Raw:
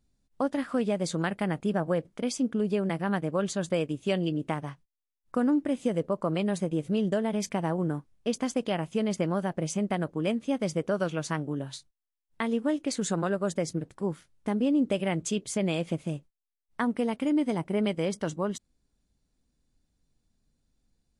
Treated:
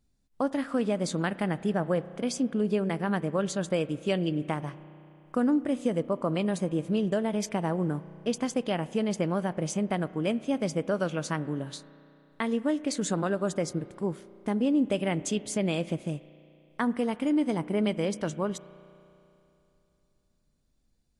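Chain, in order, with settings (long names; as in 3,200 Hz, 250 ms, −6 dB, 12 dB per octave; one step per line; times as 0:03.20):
spring reverb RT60 3 s, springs 33 ms, chirp 80 ms, DRR 16.5 dB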